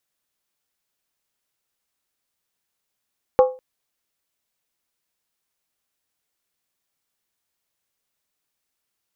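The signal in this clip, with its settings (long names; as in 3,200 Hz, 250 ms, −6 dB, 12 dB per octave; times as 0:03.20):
struck skin length 0.20 s, lowest mode 512 Hz, decay 0.32 s, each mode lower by 7.5 dB, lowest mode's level −7 dB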